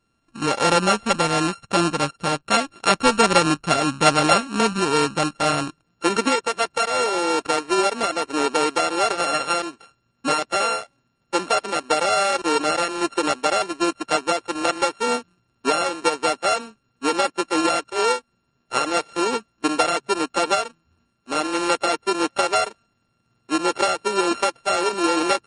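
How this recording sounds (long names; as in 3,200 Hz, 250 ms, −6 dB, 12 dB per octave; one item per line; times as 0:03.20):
a buzz of ramps at a fixed pitch in blocks of 32 samples
MP3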